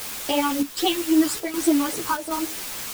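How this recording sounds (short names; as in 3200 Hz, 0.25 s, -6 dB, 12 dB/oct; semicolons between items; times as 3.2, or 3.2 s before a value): phasing stages 12, 3.7 Hz, lowest notch 590–1600 Hz; a quantiser's noise floor 6-bit, dither triangular; chopped level 1.3 Hz, depth 60%, duty 80%; a shimmering, thickened sound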